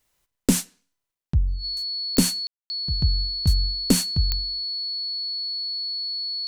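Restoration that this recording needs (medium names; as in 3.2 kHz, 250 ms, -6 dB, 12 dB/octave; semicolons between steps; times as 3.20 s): de-click; band-stop 4.4 kHz, Q 30; room tone fill 2.47–2.70 s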